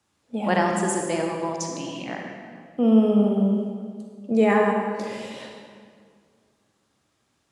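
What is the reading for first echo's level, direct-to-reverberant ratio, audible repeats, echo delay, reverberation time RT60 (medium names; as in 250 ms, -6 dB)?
no echo, 1.0 dB, no echo, no echo, 2.0 s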